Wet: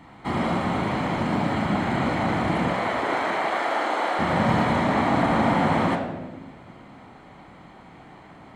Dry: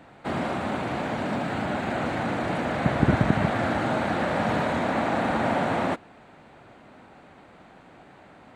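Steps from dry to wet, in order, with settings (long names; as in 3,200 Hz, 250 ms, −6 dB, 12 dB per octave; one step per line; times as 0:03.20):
0:02.68–0:04.19: high-pass filter 400 Hz 24 dB per octave
convolution reverb RT60 1.2 s, pre-delay 18 ms, DRR 2.5 dB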